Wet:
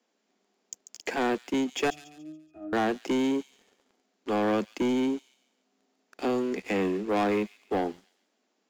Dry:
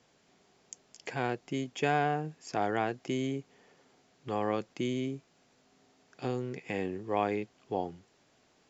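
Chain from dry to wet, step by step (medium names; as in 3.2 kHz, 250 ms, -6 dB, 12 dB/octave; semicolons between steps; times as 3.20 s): steep high-pass 190 Hz 96 dB/octave; bass shelf 330 Hz +5 dB; waveshaping leveller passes 3; 1.90–2.73 s: pitch-class resonator D#, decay 0.55 s; feedback echo behind a high-pass 141 ms, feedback 38%, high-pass 3.7 kHz, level -10 dB; trim -3.5 dB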